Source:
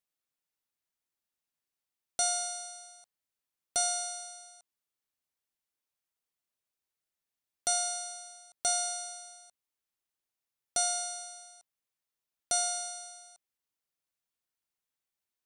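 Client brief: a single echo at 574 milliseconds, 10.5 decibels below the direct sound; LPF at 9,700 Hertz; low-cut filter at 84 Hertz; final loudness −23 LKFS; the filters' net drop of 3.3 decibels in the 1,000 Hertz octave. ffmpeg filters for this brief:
ffmpeg -i in.wav -af "highpass=84,lowpass=9700,equalizer=frequency=1000:width_type=o:gain=-6.5,aecho=1:1:574:0.299,volume=10.5dB" out.wav

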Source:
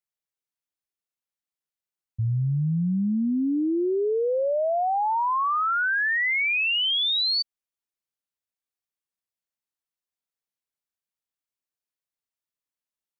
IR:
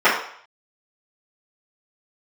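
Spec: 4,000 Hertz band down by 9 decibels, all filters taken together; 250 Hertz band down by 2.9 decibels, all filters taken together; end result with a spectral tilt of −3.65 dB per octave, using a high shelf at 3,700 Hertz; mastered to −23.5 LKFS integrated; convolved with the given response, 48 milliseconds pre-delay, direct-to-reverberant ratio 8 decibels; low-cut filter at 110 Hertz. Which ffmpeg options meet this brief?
-filter_complex "[0:a]highpass=110,equalizer=frequency=250:width_type=o:gain=-3.5,highshelf=frequency=3700:gain=-7,equalizer=frequency=4000:width_type=o:gain=-7.5,asplit=2[link_01][link_02];[1:a]atrim=start_sample=2205,adelay=48[link_03];[link_02][link_03]afir=irnorm=-1:irlink=0,volume=-33dB[link_04];[link_01][link_04]amix=inputs=2:normalize=0,volume=2dB"

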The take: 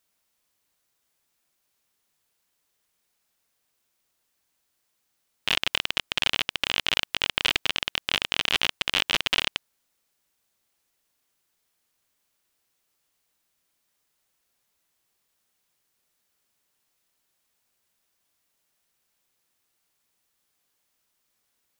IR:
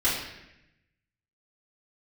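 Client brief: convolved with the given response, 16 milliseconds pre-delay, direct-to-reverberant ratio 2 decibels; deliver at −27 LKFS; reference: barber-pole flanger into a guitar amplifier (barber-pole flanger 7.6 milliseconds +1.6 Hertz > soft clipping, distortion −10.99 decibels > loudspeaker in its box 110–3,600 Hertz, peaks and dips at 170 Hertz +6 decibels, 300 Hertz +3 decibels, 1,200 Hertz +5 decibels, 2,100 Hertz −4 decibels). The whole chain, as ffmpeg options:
-filter_complex "[0:a]asplit=2[link_01][link_02];[1:a]atrim=start_sample=2205,adelay=16[link_03];[link_02][link_03]afir=irnorm=-1:irlink=0,volume=-14.5dB[link_04];[link_01][link_04]amix=inputs=2:normalize=0,asplit=2[link_05][link_06];[link_06]adelay=7.6,afreqshift=1.6[link_07];[link_05][link_07]amix=inputs=2:normalize=1,asoftclip=threshold=-18.5dB,highpass=110,equalizer=frequency=170:width_type=q:width=4:gain=6,equalizer=frequency=300:width_type=q:width=4:gain=3,equalizer=frequency=1200:width_type=q:width=4:gain=5,equalizer=frequency=2100:width_type=q:width=4:gain=-4,lowpass=frequency=3600:width=0.5412,lowpass=frequency=3600:width=1.3066,volume=2.5dB"

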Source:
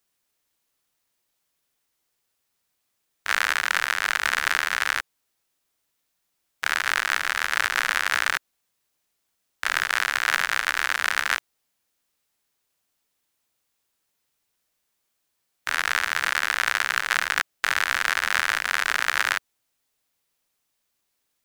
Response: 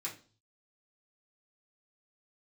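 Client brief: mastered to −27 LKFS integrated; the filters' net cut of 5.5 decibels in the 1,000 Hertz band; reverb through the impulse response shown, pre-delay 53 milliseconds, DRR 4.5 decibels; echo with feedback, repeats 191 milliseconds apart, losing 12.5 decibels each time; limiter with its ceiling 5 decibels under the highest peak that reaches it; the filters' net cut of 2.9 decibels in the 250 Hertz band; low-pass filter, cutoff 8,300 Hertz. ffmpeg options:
-filter_complex "[0:a]lowpass=8300,equalizer=frequency=250:width_type=o:gain=-3.5,equalizer=frequency=1000:width_type=o:gain=-8,alimiter=limit=-9.5dB:level=0:latency=1,aecho=1:1:191|382|573:0.237|0.0569|0.0137,asplit=2[link_01][link_02];[1:a]atrim=start_sample=2205,adelay=53[link_03];[link_02][link_03]afir=irnorm=-1:irlink=0,volume=-5dB[link_04];[link_01][link_04]amix=inputs=2:normalize=0,volume=-0.5dB"

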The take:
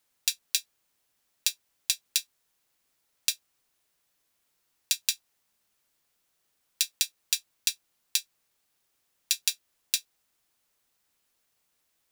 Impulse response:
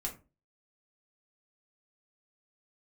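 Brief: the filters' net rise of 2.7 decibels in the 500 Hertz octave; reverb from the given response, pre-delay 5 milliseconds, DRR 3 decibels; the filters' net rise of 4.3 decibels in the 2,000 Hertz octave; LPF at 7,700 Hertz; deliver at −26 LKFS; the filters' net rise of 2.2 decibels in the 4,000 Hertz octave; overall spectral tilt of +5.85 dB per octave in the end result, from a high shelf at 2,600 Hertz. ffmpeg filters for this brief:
-filter_complex "[0:a]lowpass=7700,equalizer=frequency=500:width_type=o:gain=3,equalizer=frequency=2000:width_type=o:gain=8,highshelf=frequency=2600:gain=-8.5,equalizer=frequency=4000:width_type=o:gain=8,asplit=2[link_01][link_02];[1:a]atrim=start_sample=2205,adelay=5[link_03];[link_02][link_03]afir=irnorm=-1:irlink=0,volume=-3.5dB[link_04];[link_01][link_04]amix=inputs=2:normalize=0,volume=3dB"

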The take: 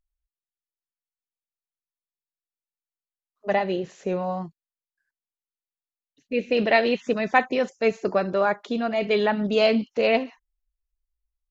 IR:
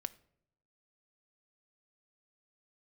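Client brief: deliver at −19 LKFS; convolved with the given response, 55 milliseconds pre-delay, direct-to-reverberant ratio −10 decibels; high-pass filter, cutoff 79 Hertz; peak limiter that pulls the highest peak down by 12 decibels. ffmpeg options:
-filter_complex "[0:a]highpass=79,alimiter=limit=-16dB:level=0:latency=1,asplit=2[link_01][link_02];[1:a]atrim=start_sample=2205,adelay=55[link_03];[link_02][link_03]afir=irnorm=-1:irlink=0,volume=12dB[link_04];[link_01][link_04]amix=inputs=2:normalize=0,volume=-2.5dB"

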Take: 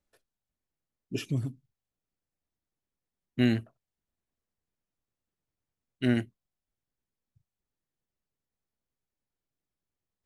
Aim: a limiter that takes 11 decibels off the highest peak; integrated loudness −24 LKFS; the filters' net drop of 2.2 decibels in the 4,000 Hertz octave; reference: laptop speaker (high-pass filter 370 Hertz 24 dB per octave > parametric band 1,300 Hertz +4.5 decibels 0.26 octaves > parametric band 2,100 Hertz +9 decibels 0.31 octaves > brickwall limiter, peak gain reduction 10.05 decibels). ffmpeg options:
ffmpeg -i in.wav -af "equalizer=frequency=4000:width_type=o:gain=-5,alimiter=limit=-23dB:level=0:latency=1,highpass=frequency=370:width=0.5412,highpass=frequency=370:width=1.3066,equalizer=frequency=1300:width_type=o:width=0.26:gain=4.5,equalizer=frequency=2100:width_type=o:width=0.31:gain=9,volume=25dB,alimiter=limit=-10dB:level=0:latency=1" out.wav

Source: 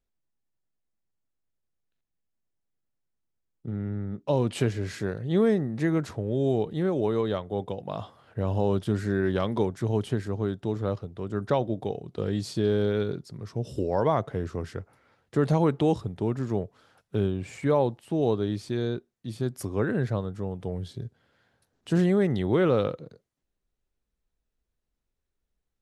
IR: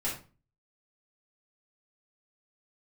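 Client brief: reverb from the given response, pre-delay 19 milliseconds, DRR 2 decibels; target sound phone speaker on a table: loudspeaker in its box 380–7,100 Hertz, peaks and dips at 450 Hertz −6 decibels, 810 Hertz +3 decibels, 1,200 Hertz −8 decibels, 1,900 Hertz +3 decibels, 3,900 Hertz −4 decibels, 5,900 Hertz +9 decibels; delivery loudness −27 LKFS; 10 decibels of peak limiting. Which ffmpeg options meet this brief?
-filter_complex "[0:a]alimiter=limit=-21.5dB:level=0:latency=1,asplit=2[link_01][link_02];[1:a]atrim=start_sample=2205,adelay=19[link_03];[link_02][link_03]afir=irnorm=-1:irlink=0,volume=-7.5dB[link_04];[link_01][link_04]amix=inputs=2:normalize=0,highpass=frequency=380:width=0.5412,highpass=frequency=380:width=1.3066,equalizer=frequency=450:width_type=q:width=4:gain=-6,equalizer=frequency=810:width_type=q:width=4:gain=3,equalizer=frequency=1200:width_type=q:width=4:gain=-8,equalizer=frequency=1900:width_type=q:width=4:gain=3,equalizer=frequency=3900:width_type=q:width=4:gain=-4,equalizer=frequency=5900:width_type=q:width=4:gain=9,lowpass=frequency=7100:width=0.5412,lowpass=frequency=7100:width=1.3066,volume=10.5dB"

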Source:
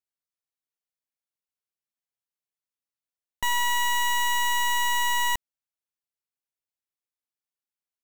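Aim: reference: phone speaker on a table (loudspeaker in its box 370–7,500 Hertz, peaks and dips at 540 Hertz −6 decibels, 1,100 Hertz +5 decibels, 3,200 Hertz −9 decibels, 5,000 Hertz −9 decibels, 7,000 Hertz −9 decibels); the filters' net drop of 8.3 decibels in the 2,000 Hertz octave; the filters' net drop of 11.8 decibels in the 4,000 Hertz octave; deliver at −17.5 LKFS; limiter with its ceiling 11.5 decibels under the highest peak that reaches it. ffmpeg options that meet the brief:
ffmpeg -i in.wav -af "equalizer=frequency=2000:width_type=o:gain=-7,equalizer=frequency=4000:width_type=o:gain=-5,alimiter=level_in=10dB:limit=-24dB:level=0:latency=1,volume=-10dB,highpass=frequency=370:width=0.5412,highpass=frequency=370:width=1.3066,equalizer=frequency=540:width_type=q:width=4:gain=-6,equalizer=frequency=1100:width_type=q:width=4:gain=5,equalizer=frequency=3200:width_type=q:width=4:gain=-9,equalizer=frequency=5000:width_type=q:width=4:gain=-9,equalizer=frequency=7000:width_type=q:width=4:gain=-9,lowpass=frequency=7500:width=0.5412,lowpass=frequency=7500:width=1.3066,volume=22dB" out.wav

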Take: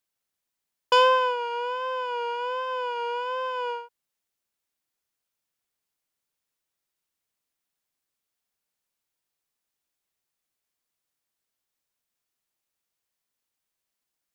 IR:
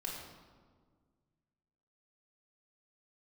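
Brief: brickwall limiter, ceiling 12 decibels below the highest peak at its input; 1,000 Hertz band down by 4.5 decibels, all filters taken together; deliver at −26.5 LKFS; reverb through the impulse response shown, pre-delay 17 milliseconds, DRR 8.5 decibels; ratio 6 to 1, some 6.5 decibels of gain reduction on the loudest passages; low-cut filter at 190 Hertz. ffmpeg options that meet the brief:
-filter_complex "[0:a]highpass=190,equalizer=frequency=1000:width_type=o:gain=-4.5,acompressor=threshold=-23dB:ratio=6,alimiter=limit=-23.5dB:level=0:latency=1,asplit=2[link_01][link_02];[1:a]atrim=start_sample=2205,adelay=17[link_03];[link_02][link_03]afir=irnorm=-1:irlink=0,volume=-9dB[link_04];[link_01][link_04]amix=inputs=2:normalize=0,volume=5.5dB"

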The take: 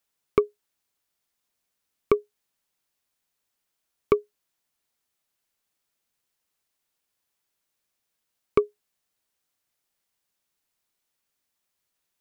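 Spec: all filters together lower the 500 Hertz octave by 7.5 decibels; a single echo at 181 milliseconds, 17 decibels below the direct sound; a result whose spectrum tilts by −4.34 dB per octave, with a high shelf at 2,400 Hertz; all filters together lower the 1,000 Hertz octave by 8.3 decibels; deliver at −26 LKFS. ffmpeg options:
ffmpeg -i in.wav -af "equalizer=frequency=500:width_type=o:gain=-8.5,equalizer=frequency=1000:width_type=o:gain=-7.5,highshelf=frequency=2400:gain=-4.5,aecho=1:1:181:0.141,volume=9dB" out.wav

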